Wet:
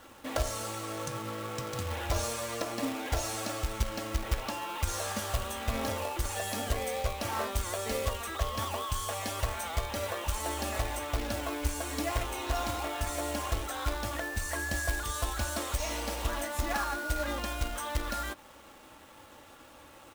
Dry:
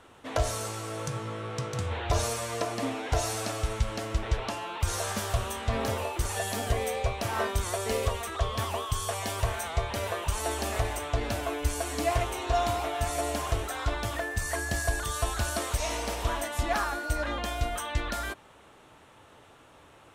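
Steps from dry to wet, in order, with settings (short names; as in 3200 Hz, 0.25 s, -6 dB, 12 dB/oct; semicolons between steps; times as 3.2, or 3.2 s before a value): comb 3.6 ms, depth 48%; in parallel at +1 dB: compressor, threshold -37 dBFS, peak gain reduction 16.5 dB; on the sum: companded quantiser 4-bit; gain -6.5 dB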